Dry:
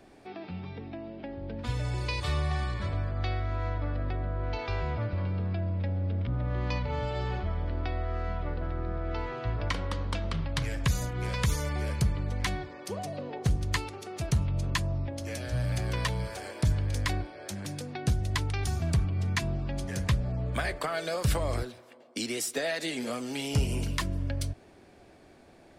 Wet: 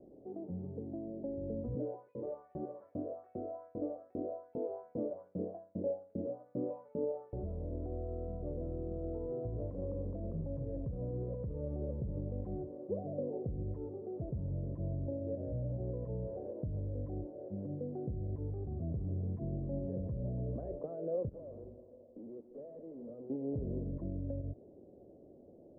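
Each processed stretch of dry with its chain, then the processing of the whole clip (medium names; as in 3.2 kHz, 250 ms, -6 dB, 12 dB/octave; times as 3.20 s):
1.75–7.33 s: LFO high-pass saw up 2.5 Hz 200–2800 Hz + doubling 23 ms -5 dB
21.29–23.30 s: hum notches 50/100/150/200/250/300/350/400 Hz + valve stage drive 44 dB, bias 0.45 + feedback delay 155 ms, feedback 60%, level -16 dB
whole clip: peak limiter -26 dBFS; Chebyshev low-pass 550 Hz, order 4; tilt EQ +3 dB/octave; trim +5.5 dB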